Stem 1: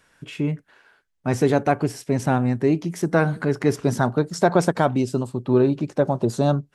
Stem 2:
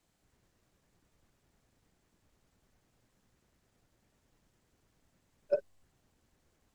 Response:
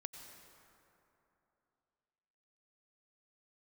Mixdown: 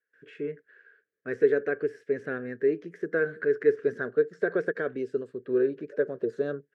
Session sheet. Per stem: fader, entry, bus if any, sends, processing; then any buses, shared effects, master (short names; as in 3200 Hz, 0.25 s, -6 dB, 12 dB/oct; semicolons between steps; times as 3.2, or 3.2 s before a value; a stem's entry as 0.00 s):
+2.5 dB, 0.00 s, no send, gate with hold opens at -50 dBFS; de-esser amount 85%
+2.5 dB, 0.40 s, no send, auto duck -9 dB, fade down 1.90 s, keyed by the first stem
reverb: off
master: double band-pass 860 Hz, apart 1.9 oct